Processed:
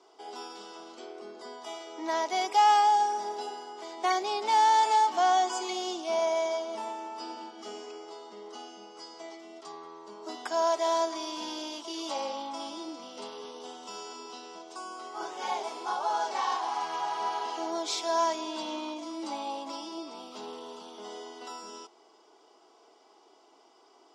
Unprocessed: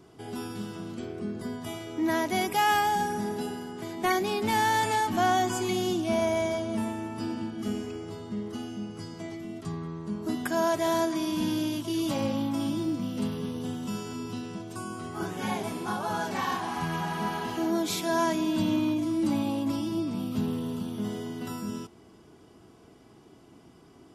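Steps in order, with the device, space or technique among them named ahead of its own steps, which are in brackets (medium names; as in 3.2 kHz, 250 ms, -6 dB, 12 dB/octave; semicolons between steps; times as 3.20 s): phone speaker on a table (cabinet simulation 440–7300 Hz, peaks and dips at 540 Hz -3 dB, 860 Hz +5 dB, 1.7 kHz -8 dB, 2.5 kHz -4 dB, 5.2 kHz +4 dB)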